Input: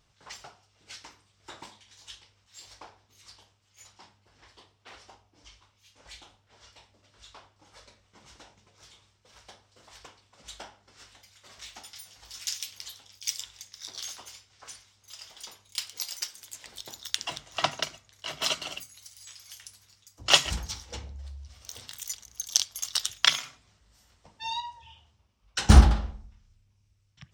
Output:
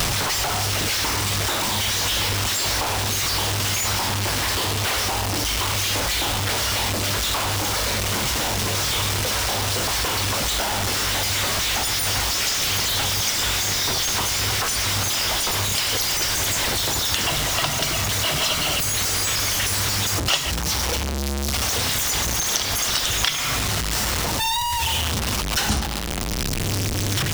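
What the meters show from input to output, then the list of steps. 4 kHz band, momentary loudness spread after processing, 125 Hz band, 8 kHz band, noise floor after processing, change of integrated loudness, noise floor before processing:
+12.0 dB, 2 LU, +6.0 dB, +14.5 dB, -25 dBFS, +7.0 dB, -68 dBFS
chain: jump at every zero crossing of -18 dBFS; three bands compressed up and down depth 100%

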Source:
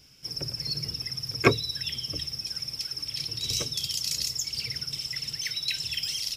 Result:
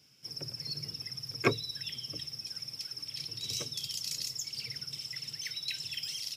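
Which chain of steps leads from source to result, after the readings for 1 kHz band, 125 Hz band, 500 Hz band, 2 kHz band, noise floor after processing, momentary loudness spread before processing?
-7.0 dB, -8.0 dB, -7.0 dB, -7.0 dB, -50 dBFS, 7 LU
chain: high-pass 100 Hz 24 dB/octave; trim -7 dB

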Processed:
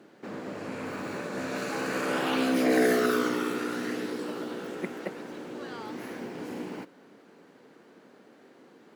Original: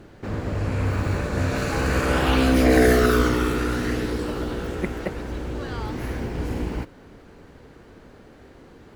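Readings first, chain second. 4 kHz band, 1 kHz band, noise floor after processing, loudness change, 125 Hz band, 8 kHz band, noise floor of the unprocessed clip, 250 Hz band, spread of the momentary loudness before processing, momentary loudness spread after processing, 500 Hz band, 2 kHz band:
-6.0 dB, -6.0 dB, -57 dBFS, -7.0 dB, -20.5 dB, -6.0 dB, -48 dBFS, -6.5 dB, 14 LU, 16 LU, -6.0 dB, -6.0 dB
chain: high-pass 190 Hz 24 dB/octave; trim -6 dB

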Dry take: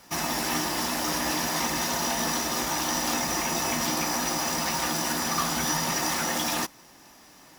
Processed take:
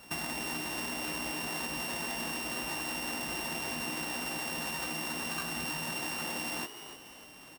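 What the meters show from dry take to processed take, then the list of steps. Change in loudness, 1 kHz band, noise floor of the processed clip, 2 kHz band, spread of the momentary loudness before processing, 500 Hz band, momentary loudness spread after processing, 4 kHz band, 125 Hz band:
-8.5 dB, -11.5 dB, -52 dBFS, -5.5 dB, 1 LU, -9.5 dB, 2 LU, -8.0 dB, -9.0 dB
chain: sorted samples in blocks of 16 samples; compression 6:1, threshold -34 dBFS, peak gain reduction 11.5 dB; on a send: frequency-shifting echo 296 ms, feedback 35%, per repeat +110 Hz, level -11.5 dB

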